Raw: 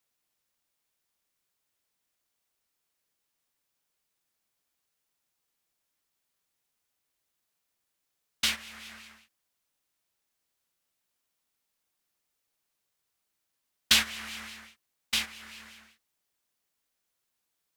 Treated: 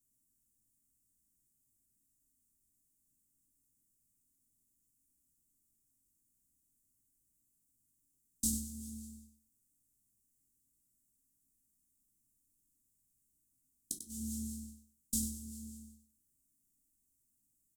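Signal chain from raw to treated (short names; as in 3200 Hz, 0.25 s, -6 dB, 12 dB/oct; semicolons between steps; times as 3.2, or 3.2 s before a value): elliptic band-stop 270–7700 Hz, stop band 70 dB; high shelf 12000 Hz -6.5 dB; in parallel at -2 dB: compressor, threshold -43 dBFS, peak gain reduction 13.5 dB; on the sum: flipped gate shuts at -22 dBFS, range -39 dB; feedback echo 96 ms, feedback 24%, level -9 dB; on a send at -3 dB: reverb, pre-delay 3 ms; on the sum: gain +1.5 dB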